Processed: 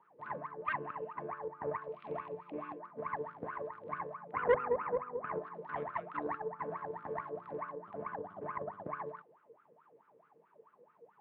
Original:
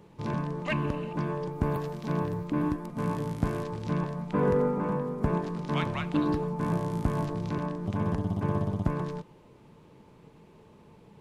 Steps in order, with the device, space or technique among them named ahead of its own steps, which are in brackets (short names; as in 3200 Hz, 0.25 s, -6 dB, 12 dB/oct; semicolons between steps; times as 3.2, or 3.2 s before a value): 1.88–2.79 resonant high shelf 2000 Hz +7 dB, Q 3; wah-wah guitar rig (wah 4.6 Hz 470–1400 Hz, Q 17; tube stage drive 32 dB, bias 0.75; speaker cabinet 100–3500 Hz, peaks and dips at 150 Hz +3 dB, 540 Hz -5 dB, 890 Hz -4 dB, 1800 Hz +6 dB); gain +15 dB